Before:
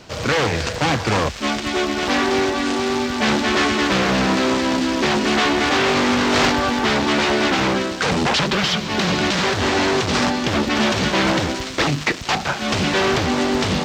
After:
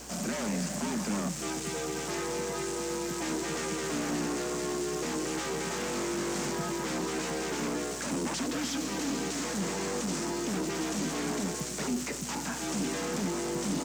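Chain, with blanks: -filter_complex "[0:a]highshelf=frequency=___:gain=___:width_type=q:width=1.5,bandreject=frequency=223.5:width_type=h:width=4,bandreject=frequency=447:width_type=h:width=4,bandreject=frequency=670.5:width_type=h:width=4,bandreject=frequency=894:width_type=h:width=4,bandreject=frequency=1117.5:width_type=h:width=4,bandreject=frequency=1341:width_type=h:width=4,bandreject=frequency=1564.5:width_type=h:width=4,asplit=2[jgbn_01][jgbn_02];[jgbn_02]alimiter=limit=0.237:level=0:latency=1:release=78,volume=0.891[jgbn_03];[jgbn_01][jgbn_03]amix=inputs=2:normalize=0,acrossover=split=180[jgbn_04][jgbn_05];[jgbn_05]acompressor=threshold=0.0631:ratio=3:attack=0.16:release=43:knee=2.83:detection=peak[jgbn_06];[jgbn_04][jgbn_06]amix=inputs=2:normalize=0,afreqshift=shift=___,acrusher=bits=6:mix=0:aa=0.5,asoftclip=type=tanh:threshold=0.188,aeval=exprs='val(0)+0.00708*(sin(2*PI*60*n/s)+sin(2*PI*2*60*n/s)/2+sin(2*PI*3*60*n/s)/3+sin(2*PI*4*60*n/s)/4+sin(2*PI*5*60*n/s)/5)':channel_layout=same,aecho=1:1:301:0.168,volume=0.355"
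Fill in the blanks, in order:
5500, 14, 100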